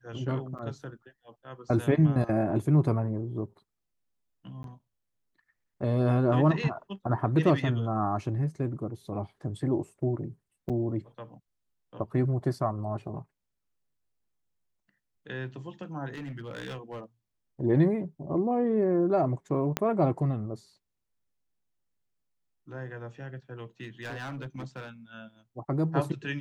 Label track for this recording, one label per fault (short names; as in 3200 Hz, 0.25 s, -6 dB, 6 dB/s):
0.580000	0.590000	gap 7.4 ms
4.630000	4.640000	gap 12 ms
10.690000	10.700000	gap 6.9 ms
16.110000	17.040000	clipped -34 dBFS
19.770000	19.770000	pop -11 dBFS
23.810000	24.890000	clipped -33.5 dBFS